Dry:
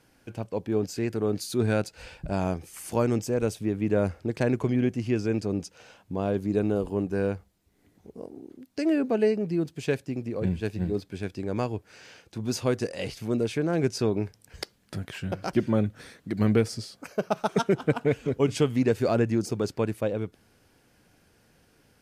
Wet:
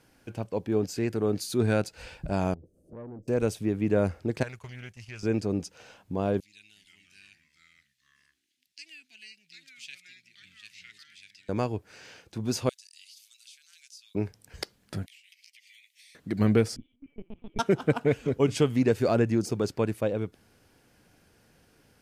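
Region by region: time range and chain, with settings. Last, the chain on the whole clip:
0:02.54–0:03.28: elliptic low-pass filter 580 Hz + downward compressor 2 to 1, threshold −44 dBFS + tube saturation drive 37 dB, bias 0.25
0:04.43–0:05.23: noise gate −34 dBFS, range −8 dB + guitar amp tone stack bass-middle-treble 10-0-10 + highs frequency-modulated by the lows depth 0.18 ms
0:06.40–0:11.49: inverse Chebyshev high-pass filter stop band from 1,300 Hz + high-shelf EQ 8,400 Hz −12 dB + delay with pitch and tempo change per echo 297 ms, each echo −3 semitones, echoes 2, each echo −6 dB
0:12.69–0:14.15: inverse Chebyshev high-pass filter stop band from 570 Hz, stop band 80 dB + downward compressor 3 to 1, threshold −50 dBFS
0:15.06–0:16.15: Butterworth high-pass 2,000 Hz 96 dB per octave + downward compressor 12 to 1, threshold −51 dBFS
0:16.76–0:17.59: formant resonators in series i + linear-prediction vocoder at 8 kHz pitch kept
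whole clip: no processing

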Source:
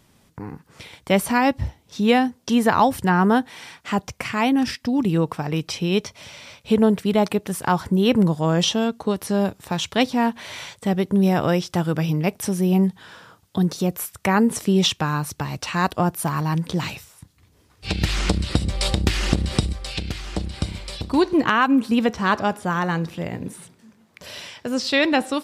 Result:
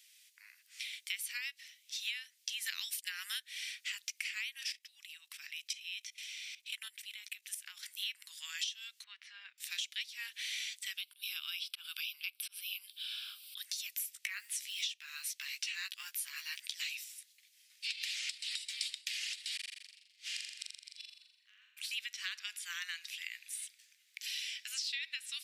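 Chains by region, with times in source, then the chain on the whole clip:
0:02.66–0:03.40: downward expander −29 dBFS + high-shelf EQ 2,200 Hz +11.5 dB
0:04.72–0:07.83: dynamic equaliser 4,700 Hz, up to −5 dB, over −49 dBFS, Q 3.6 + output level in coarse steps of 15 dB
0:09.04–0:09.58: low-pass filter 2,000 Hz + spectral tilt −2 dB per octave
0:10.97–0:13.58: volume swells 181 ms + phaser with its sweep stopped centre 1,900 Hz, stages 6 + multiband upward and downward compressor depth 100%
0:14.13–0:16.62: high-shelf EQ 5,400 Hz −4.5 dB + double-tracking delay 15 ms −5 dB + floating-point word with a short mantissa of 6 bits
0:19.55–0:21.77: gate with flip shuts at −21 dBFS, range −37 dB + flutter between parallel walls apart 7.2 metres, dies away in 0.86 s
whole clip: Butterworth high-pass 2,100 Hz 36 dB per octave; downward compressor 10 to 1, threshold −37 dBFS; level +1 dB

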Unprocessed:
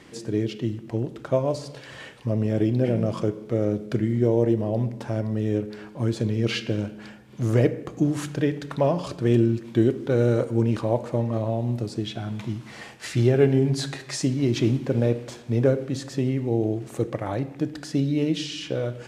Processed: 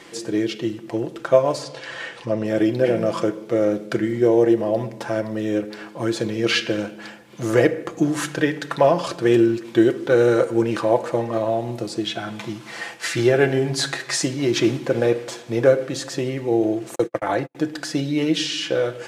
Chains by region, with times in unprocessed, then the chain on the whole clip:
0:01.63–0:02.45: Bessel low-pass filter 6,900 Hz + upward compression, threshold −38 dBFS
0:16.95–0:17.55: noise gate −30 dBFS, range −48 dB + multiband upward and downward compressor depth 70%
whole clip: bass and treble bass −13 dB, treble +1 dB; comb filter 5.9 ms, depth 45%; dynamic equaliser 1,600 Hz, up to +5 dB, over −47 dBFS, Q 2.2; level +6.5 dB

